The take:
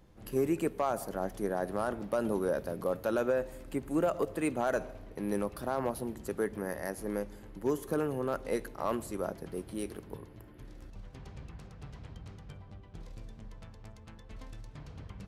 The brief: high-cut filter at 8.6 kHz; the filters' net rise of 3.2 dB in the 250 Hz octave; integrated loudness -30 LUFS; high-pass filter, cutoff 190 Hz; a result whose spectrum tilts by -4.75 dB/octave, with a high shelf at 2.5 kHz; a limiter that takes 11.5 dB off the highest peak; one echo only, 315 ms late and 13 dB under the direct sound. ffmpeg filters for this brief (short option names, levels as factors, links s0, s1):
-af "highpass=190,lowpass=8600,equalizer=f=250:t=o:g=5.5,highshelf=f=2500:g=9,alimiter=level_in=1.58:limit=0.0631:level=0:latency=1,volume=0.631,aecho=1:1:315:0.224,volume=2.66"